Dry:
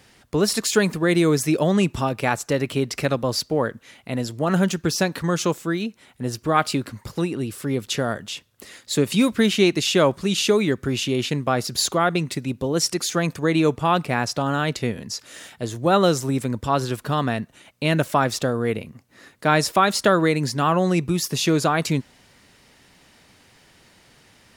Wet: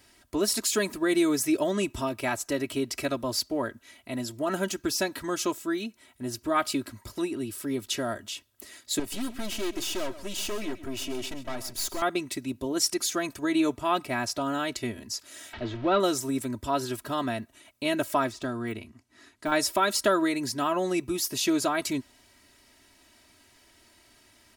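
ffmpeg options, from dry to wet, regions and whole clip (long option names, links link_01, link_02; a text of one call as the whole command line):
ffmpeg -i in.wav -filter_complex "[0:a]asettb=1/sr,asplit=3[link_01][link_02][link_03];[link_01]atrim=end=8.994[link_04];[link_02]atrim=start=8.99:end=12.02,asetpts=PTS-STARTPTS,afade=type=in:duration=0.004:curve=qsin,afade=type=out:start_time=3.026:duration=0.004:curve=qsin,bandreject=frequency=4000:width=14,aeval=exprs='(tanh(15.8*val(0)+0.65)-tanh(0.65))/15.8':channel_layout=same,aecho=1:1:133:0.188,atrim=end_sample=133623[link_05];[link_03]atrim=start=12.016[link_06];[link_04][link_05]acrossfade=duration=0.004:curve1=hsin:curve2=qsin[link_07];[link_07][link_06]acrossfade=duration=0.004:curve1=qsin:curve2=hsin,asettb=1/sr,asplit=3[link_08][link_09][link_10];[link_08]atrim=end=15.534[link_11];[link_09]atrim=start=15.53:end=16,asetpts=PTS-STARTPTS,afade=type=in:duration=0.004:curve=qsin,afade=type=out:start_time=0.466:duration=0.004:curve=qsin,aeval=exprs='val(0)+0.5*0.0422*sgn(val(0))':channel_layout=same,lowpass=frequency=3700:width=0.5412,lowpass=frequency=3700:width=1.3066,bandreject=frequency=1000:width=25[link_12];[link_10]atrim=start=15.996[link_13];[link_11][link_12]acrossfade=duration=0.004:curve1=hsin:curve2=qsin[link_14];[link_14][link_13]acrossfade=duration=0.004:curve1=qsin:curve2=hsin,asettb=1/sr,asplit=3[link_15][link_16][link_17];[link_15]atrim=end=18.294[link_18];[link_16]atrim=start=18.29:end=19.52,asetpts=PTS-STARTPTS,afade=type=in:duration=0.004:curve=qsin,afade=type=out:start_time=1.226:duration=0.004:curve=qsin,lowpass=8400,deesser=0.9,equalizer=frequency=540:width_type=o:width=0.39:gain=-7.5[link_19];[link_17]atrim=start=19.516[link_20];[link_18][link_19]acrossfade=duration=0.004:curve1=hsin:curve2=qsin[link_21];[link_21][link_20]acrossfade=duration=0.004:curve1=qsin:curve2=hsin,highshelf=frequency=7900:gain=8.5,aecho=1:1:3.1:0.83,volume=-8.5dB" out.wav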